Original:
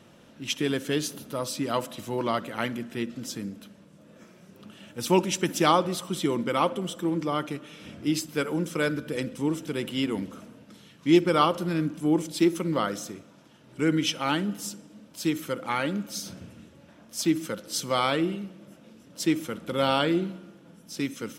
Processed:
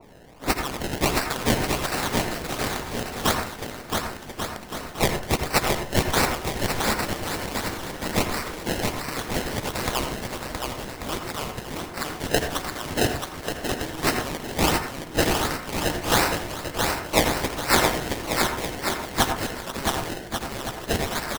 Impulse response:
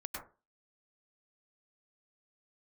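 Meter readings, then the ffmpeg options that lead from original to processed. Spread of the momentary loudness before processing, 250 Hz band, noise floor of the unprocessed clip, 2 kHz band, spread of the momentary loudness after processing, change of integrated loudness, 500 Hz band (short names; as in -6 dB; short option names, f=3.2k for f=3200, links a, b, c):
15 LU, -2.5 dB, -54 dBFS, +7.5 dB, 9 LU, +1.5 dB, +1.0 dB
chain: -filter_complex "[0:a]highpass=f=540:p=1,highshelf=f=9.2k:g=7,acompressor=threshold=-33dB:ratio=6,aexciter=amount=8.1:drive=5.9:freq=2.4k,acrusher=samples=26:mix=1:aa=0.000001:lfo=1:lforange=26:lforate=1.4,aecho=1:1:670|1139|1467|1697|1858:0.631|0.398|0.251|0.158|0.1,asplit=2[a][b];[1:a]atrim=start_sample=2205,asetrate=52920,aresample=44100[c];[b][c]afir=irnorm=-1:irlink=0,volume=-1dB[d];[a][d]amix=inputs=2:normalize=0,adynamicequalizer=threshold=0.0316:dfrequency=1900:dqfactor=0.7:tfrequency=1900:tqfactor=0.7:attack=5:release=100:ratio=0.375:range=3:mode=boostabove:tftype=highshelf,volume=-9dB"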